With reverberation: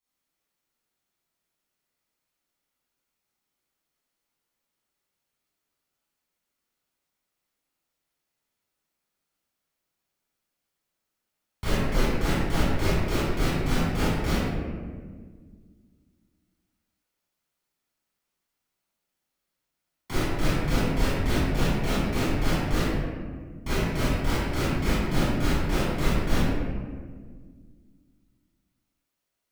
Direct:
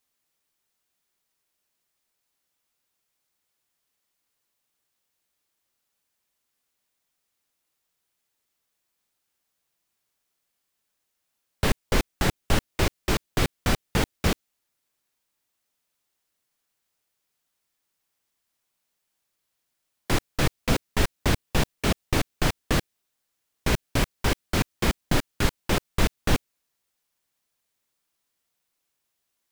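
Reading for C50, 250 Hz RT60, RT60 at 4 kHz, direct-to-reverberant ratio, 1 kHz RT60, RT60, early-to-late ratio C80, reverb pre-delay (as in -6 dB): -4.5 dB, 2.7 s, 0.90 s, -12.0 dB, 1.4 s, 1.7 s, -0.5 dB, 22 ms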